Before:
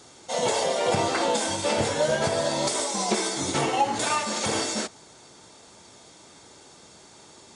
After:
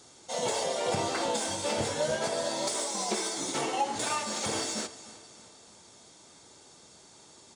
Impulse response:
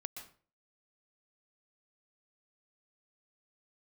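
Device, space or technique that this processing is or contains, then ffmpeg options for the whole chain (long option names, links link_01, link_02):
exciter from parts: -filter_complex "[0:a]asettb=1/sr,asplit=3[link_01][link_02][link_03];[link_01]atrim=end=2.164[link_04];[link_02]atrim=start=2.16:end=3.96,asetpts=PTS-STARTPTS,afade=type=in:duration=0.004:curve=qsin,afade=type=out:start_time=1.796:duration=0.004:curve=qsin,highpass=210[link_05];[link_03]atrim=start=3.956[link_06];[link_04][link_05]acrossfade=duration=0.004:curve1=hsin:curve2=qsin[link_07];[link_07][link_06]acrossfade=duration=0.004:curve1=qsin:curve2=hsin,aecho=1:1:309|618|927|1236:0.141|0.0678|0.0325|0.0156,asplit=2[link_08][link_09];[link_09]highpass=3100,asoftclip=type=tanh:threshold=-30.5dB,volume=-6dB[link_10];[link_08][link_10]amix=inputs=2:normalize=0,volume=-6dB"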